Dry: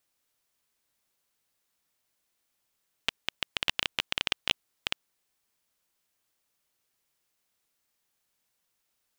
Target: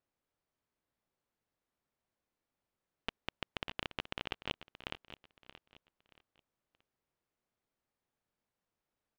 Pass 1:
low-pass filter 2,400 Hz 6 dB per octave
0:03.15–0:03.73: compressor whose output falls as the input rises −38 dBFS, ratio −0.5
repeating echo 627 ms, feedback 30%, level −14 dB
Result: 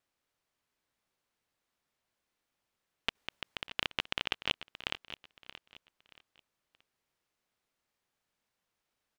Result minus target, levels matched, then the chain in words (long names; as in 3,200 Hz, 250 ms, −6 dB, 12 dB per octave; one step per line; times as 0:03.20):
1,000 Hz band −3.5 dB
low-pass filter 710 Hz 6 dB per octave
0:03.15–0:03.73: compressor whose output falls as the input rises −38 dBFS, ratio −0.5
repeating echo 627 ms, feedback 30%, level −14 dB